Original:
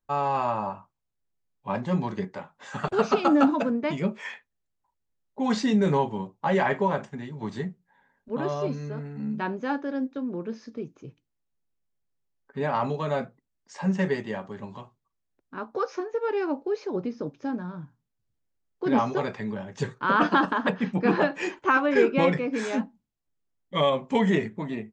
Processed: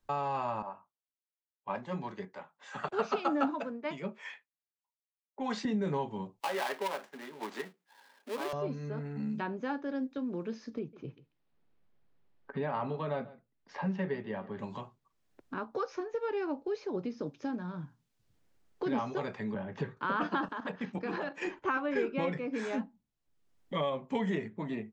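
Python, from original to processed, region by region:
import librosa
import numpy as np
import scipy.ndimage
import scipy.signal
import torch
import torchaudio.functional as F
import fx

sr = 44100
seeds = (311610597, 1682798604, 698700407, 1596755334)

y = fx.chain(x, sr, fx.highpass(hz=460.0, slope=6),
    fx.band_widen(depth_pct=100), at=(0.62, 5.65))
y = fx.chain(y, sr, fx.dead_time(dead_ms=0.19),
    fx.highpass(hz=270.0, slope=24),
    fx.tilt_eq(slope=3.0), at=(6.4, 8.53))
y = fx.chain(y, sr, fx.lowpass(hz=4700.0, slope=24),
    fx.high_shelf(hz=3000.0, db=-8.5),
    fx.echo_single(ms=139, db=-21.0), at=(10.79, 14.59))
y = fx.chain(y, sr, fx.lowpass(hz=2200.0, slope=12),
    fx.band_squash(depth_pct=40), at=(19.54, 19.97))
y = fx.chain(y, sr, fx.highpass(hz=250.0, slope=6),
    fx.peak_eq(hz=6900.0, db=5.0, octaves=1.6),
    fx.level_steps(step_db=10), at=(20.48, 21.45))
y = fx.high_shelf(y, sr, hz=6200.0, db=-8.5)
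y = fx.band_squash(y, sr, depth_pct=70)
y = y * 10.0 ** (-7.5 / 20.0)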